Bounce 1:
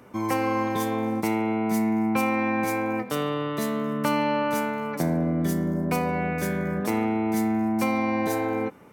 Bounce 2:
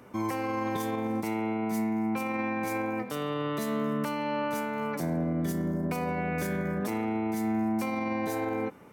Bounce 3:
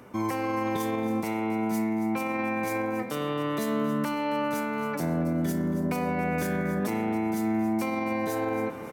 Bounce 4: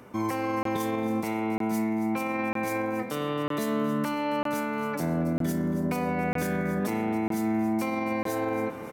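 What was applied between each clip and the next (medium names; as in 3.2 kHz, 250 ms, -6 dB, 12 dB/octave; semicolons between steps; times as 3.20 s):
peak limiter -20.5 dBFS, peak gain reduction 9.5 dB; trim -1.5 dB
reverse; upward compressor, threshold -34 dBFS; reverse; feedback delay 276 ms, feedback 50%, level -14 dB; trim +2 dB
crackling interface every 0.95 s, samples 1024, zero, from 0.63 s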